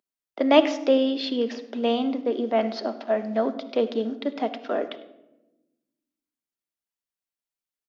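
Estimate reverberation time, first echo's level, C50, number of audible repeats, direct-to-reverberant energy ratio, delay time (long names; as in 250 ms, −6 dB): 1.0 s, −21.0 dB, 13.0 dB, 1, 9.5 dB, 100 ms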